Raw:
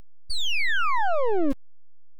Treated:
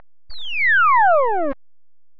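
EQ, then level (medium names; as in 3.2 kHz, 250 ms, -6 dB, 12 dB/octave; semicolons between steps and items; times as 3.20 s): low-pass 4 kHz 24 dB/octave; high-order bell 1.1 kHz +14.5 dB 2.3 oct; -3.0 dB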